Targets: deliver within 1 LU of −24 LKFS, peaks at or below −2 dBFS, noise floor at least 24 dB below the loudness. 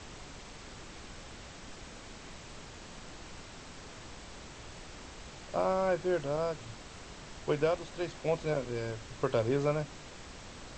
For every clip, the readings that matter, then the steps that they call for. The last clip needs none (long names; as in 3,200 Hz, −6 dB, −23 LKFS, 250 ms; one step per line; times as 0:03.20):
background noise floor −49 dBFS; target noise floor −57 dBFS; integrated loudness −33.0 LKFS; sample peak −16.5 dBFS; target loudness −24.0 LKFS
→ noise reduction from a noise print 8 dB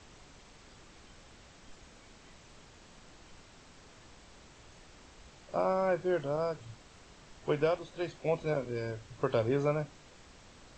background noise floor −57 dBFS; integrated loudness −33.0 LKFS; sample peak −16.0 dBFS; target loudness −24.0 LKFS
→ level +9 dB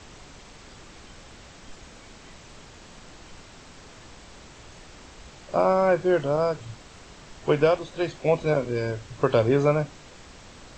integrated loudness −24.0 LKFS; sample peak −7.0 dBFS; background noise floor −48 dBFS